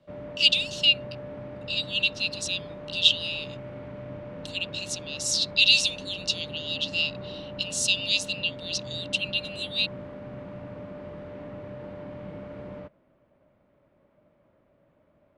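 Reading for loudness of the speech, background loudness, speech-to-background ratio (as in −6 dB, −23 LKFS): −25.0 LKFS, −40.0 LKFS, 15.0 dB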